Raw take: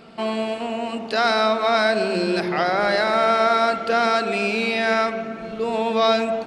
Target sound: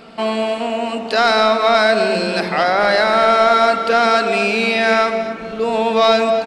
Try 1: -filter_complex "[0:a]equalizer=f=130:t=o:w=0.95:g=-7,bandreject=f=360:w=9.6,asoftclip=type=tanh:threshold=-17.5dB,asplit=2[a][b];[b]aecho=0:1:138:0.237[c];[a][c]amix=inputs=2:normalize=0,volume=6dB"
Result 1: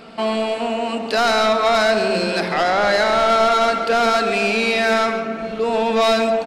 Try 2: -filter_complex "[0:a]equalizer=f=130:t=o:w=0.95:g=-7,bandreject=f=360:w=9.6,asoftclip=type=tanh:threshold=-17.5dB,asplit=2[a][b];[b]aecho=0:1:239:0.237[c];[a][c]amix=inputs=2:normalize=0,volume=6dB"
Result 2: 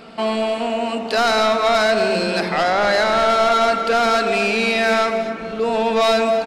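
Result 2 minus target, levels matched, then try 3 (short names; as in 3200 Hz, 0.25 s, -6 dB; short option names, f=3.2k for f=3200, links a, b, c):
soft clip: distortion +13 dB
-filter_complex "[0:a]equalizer=f=130:t=o:w=0.95:g=-7,bandreject=f=360:w=9.6,asoftclip=type=tanh:threshold=-8dB,asplit=2[a][b];[b]aecho=0:1:239:0.237[c];[a][c]amix=inputs=2:normalize=0,volume=6dB"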